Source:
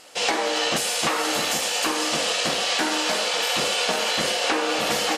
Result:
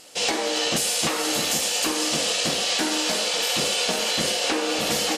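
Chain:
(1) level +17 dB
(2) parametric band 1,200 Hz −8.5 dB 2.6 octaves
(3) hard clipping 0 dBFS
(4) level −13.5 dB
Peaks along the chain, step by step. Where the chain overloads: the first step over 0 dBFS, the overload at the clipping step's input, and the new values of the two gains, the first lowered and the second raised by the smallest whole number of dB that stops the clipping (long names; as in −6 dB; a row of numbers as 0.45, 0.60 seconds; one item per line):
+6.5, +5.0, 0.0, −13.5 dBFS
step 1, 5.0 dB
step 1 +12 dB, step 4 −8.5 dB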